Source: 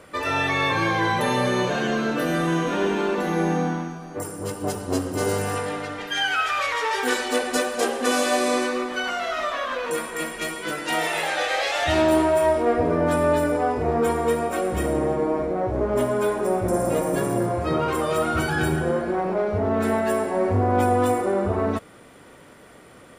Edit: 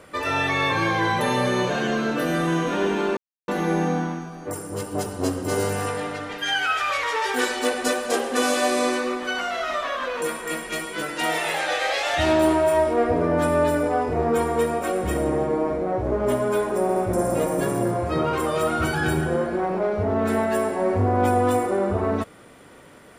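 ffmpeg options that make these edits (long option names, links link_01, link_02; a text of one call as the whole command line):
ffmpeg -i in.wav -filter_complex "[0:a]asplit=4[link_01][link_02][link_03][link_04];[link_01]atrim=end=3.17,asetpts=PTS-STARTPTS,afade=type=out:start_time=3.166:duration=0.004:curve=hsin,apad=pad_dur=0.31[link_05];[link_02]atrim=start=3.17:end=16.582,asetpts=PTS-STARTPTS,afade=type=in:duration=0.004:curve=hsin[link_06];[link_03]atrim=start=16.508:end=16.582[link_07];[link_04]atrim=start=16.508[link_08];[link_05][link_06]concat=n=2:v=0:a=1[link_09];[link_09][link_07]acrossfade=duration=0.004:curve1=hsin:curve2=hsin[link_10];[link_10][link_08]acrossfade=duration=0.004:curve1=hsin:curve2=hsin" out.wav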